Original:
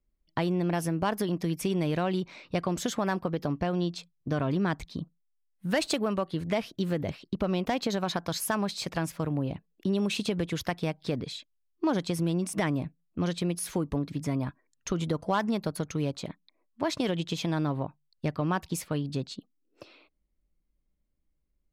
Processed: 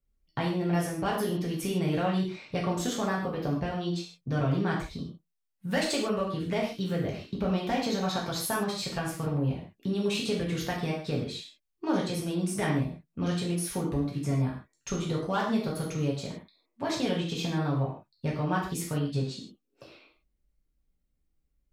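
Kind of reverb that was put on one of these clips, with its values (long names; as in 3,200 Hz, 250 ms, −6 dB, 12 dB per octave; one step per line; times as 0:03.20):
reverb whose tail is shaped and stops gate 180 ms falling, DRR −4 dB
level −5 dB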